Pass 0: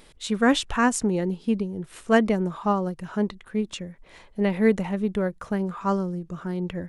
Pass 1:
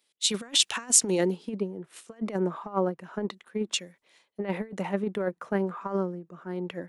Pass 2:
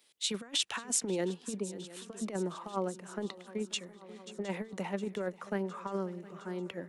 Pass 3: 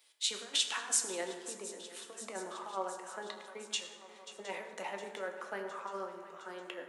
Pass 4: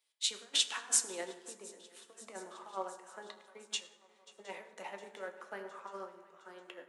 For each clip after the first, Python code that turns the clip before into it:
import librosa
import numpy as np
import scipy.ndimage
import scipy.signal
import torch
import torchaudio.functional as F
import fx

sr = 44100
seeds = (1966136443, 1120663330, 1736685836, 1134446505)

y1 = scipy.signal.sosfilt(scipy.signal.butter(2, 270.0, 'highpass', fs=sr, output='sos'), x)
y1 = fx.over_compress(y1, sr, threshold_db=-27.0, ratio=-0.5)
y1 = fx.band_widen(y1, sr, depth_pct=100)
y1 = F.gain(torch.from_numpy(y1), -1.0).numpy()
y2 = fx.echo_swing(y1, sr, ms=712, ratio=3, feedback_pct=53, wet_db=-20.5)
y2 = fx.band_squash(y2, sr, depth_pct=40)
y2 = F.gain(torch.from_numpy(y2), -6.5).numpy()
y3 = scipy.signal.sosfilt(scipy.signal.butter(2, 590.0, 'highpass', fs=sr, output='sos'), y2)
y3 = fx.rev_fdn(y3, sr, rt60_s=1.7, lf_ratio=1.2, hf_ratio=0.5, size_ms=63.0, drr_db=3.0)
y4 = fx.upward_expand(y3, sr, threshold_db=-59.0, expansion=1.5)
y4 = F.gain(torch.from_numpy(y4), 2.0).numpy()